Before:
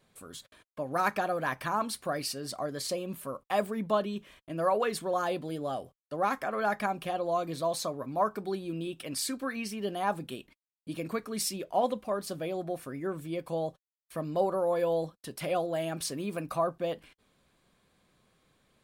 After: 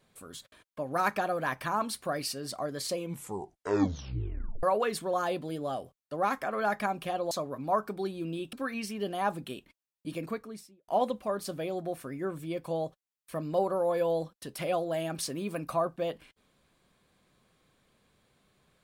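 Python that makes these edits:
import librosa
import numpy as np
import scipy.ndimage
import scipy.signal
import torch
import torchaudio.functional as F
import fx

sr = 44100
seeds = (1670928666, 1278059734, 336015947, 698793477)

y = fx.studio_fade_out(x, sr, start_s=10.94, length_s=0.76)
y = fx.edit(y, sr, fx.tape_stop(start_s=2.93, length_s=1.7),
    fx.cut(start_s=7.31, length_s=0.48),
    fx.cut(start_s=9.01, length_s=0.34), tone=tone)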